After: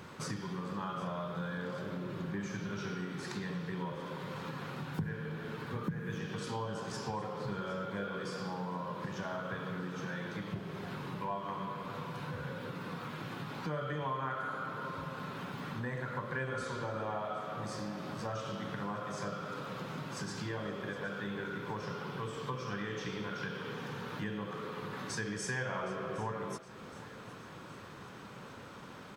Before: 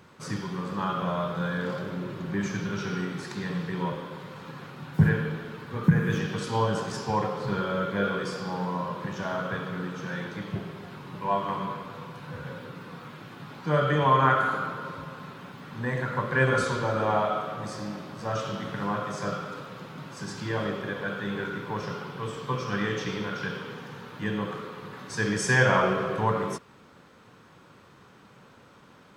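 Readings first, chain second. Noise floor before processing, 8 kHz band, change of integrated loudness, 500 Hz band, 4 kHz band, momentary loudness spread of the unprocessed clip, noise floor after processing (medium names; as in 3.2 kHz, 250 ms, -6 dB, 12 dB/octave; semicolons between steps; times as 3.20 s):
-54 dBFS, -7.5 dB, -11.0 dB, -10.0 dB, -7.5 dB, 17 LU, -49 dBFS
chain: compression 4:1, threshold -43 dBFS, peak gain reduction 24 dB; feedback delay 765 ms, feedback 56%, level -18 dB; trim +4.5 dB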